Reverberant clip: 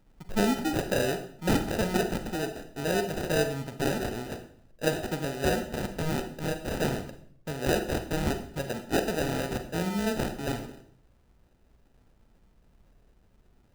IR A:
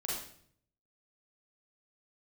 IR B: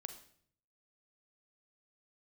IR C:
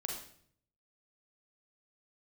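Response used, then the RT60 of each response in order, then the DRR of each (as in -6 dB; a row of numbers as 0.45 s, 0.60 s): B; 0.60 s, 0.60 s, 0.60 s; -6.0 dB, 7.0 dB, -0.5 dB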